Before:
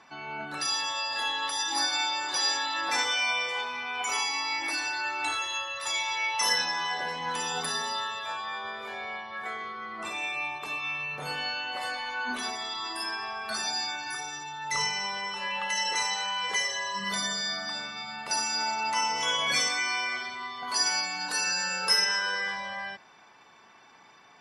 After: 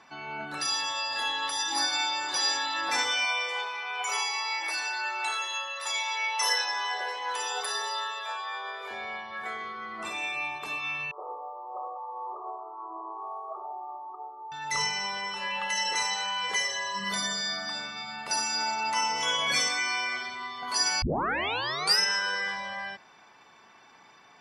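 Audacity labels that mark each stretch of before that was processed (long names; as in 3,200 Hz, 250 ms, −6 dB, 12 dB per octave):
3.250000	8.910000	Chebyshev high-pass filter 390 Hz, order 4
11.110000	14.520000	linear-phase brick-wall band-pass 320–1,300 Hz
21.020000	21.020000	tape start 0.97 s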